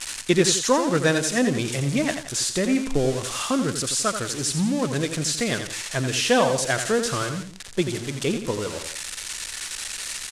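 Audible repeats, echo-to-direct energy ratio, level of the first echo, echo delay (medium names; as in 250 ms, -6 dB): 2, -7.5 dB, -8.5 dB, 86 ms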